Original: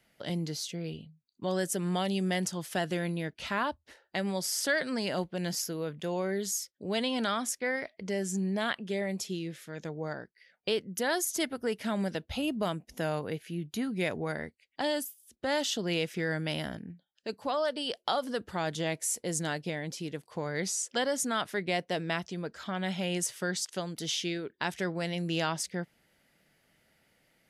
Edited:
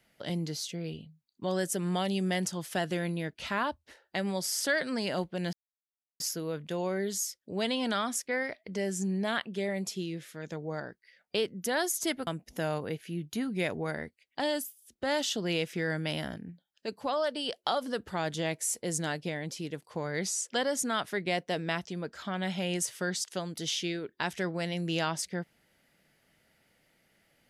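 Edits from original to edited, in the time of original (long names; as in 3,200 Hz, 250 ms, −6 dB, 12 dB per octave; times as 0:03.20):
0:05.53: splice in silence 0.67 s
0:11.60–0:12.68: remove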